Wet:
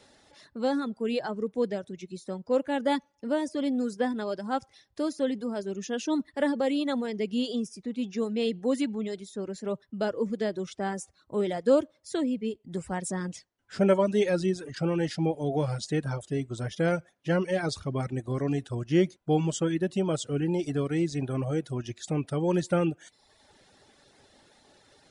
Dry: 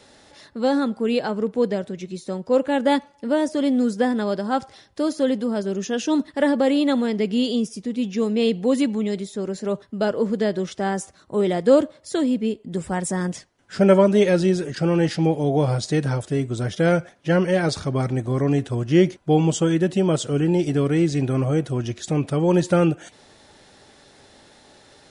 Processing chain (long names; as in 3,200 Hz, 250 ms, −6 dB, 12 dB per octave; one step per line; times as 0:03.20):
reverb reduction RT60 0.8 s
level −6.5 dB